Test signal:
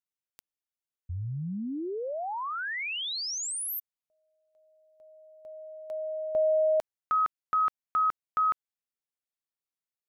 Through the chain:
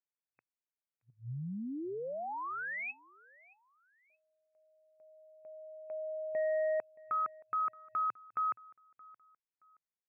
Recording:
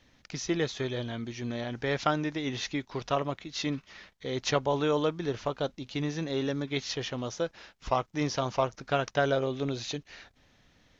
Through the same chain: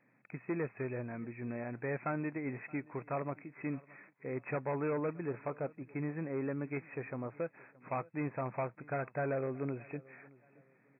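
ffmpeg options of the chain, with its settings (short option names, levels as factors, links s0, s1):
-af "asoftclip=type=hard:threshold=0.0596,aecho=1:1:623|1246:0.0708|0.0219,afftfilt=real='re*between(b*sr/4096,110,2600)':imag='im*between(b*sr/4096,110,2600)':win_size=4096:overlap=0.75,volume=0.531"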